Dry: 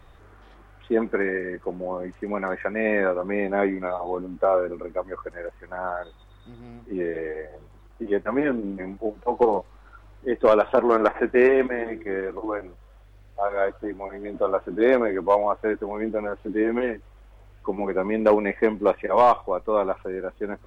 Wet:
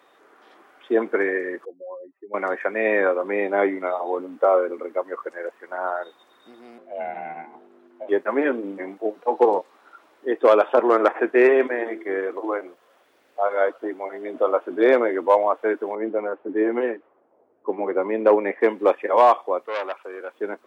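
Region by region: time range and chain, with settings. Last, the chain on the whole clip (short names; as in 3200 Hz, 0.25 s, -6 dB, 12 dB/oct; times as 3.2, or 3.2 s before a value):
1.65–2.34 spectral contrast raised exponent 2.6 + band-pass 2800 Hz, Q 0.52
6.78–8.09 high shelf 3700 Hz -11 dB + ring modulator 300 Hz
15.95–18.61 high shelf 2700 Hz -11.5 dB + low-pass opened by the level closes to 530 Hz, open at -19.5 dBFS
19.65–20.34 HPF 840 Hz 6 dB/oct + core saturation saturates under 1600 Hz
whole clip: HPF 290 Hz 24 dB/oct; AGC gain up to 3 dB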